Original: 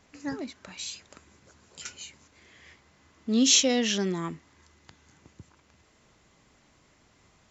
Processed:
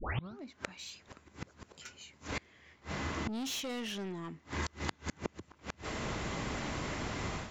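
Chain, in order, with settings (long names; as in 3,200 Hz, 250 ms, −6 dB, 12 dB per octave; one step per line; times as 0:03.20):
turntable start at the beginning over 0.39 s
low-pass filter 3,200 Hz 6 dB per octave
dynamic equaliser 2,500 Hz, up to +4 dB, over −42 dBFS, Q 0.84
automatic gain control gain up to 11 dB
soft clipping −20 dBFS, distortion −7 dB
gate with flip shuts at −38 dBFS, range −30 dB
level +14.5 dB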